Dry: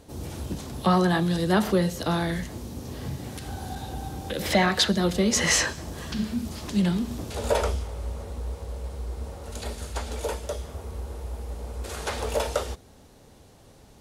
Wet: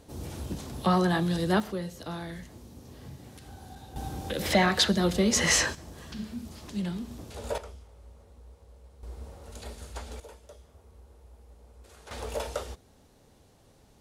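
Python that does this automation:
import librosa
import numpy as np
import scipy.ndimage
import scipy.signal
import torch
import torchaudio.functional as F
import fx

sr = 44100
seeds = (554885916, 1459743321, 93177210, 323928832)

y = fx.gain(x, sr, db=fx.steps((0.0, -3.0), (1.6, -11.5), (3.96, -1.5), (5.75, -9.0), (7.58, -18.5), (9.03, -8.0), (10.2, -18.5), (12.11, -7.0)))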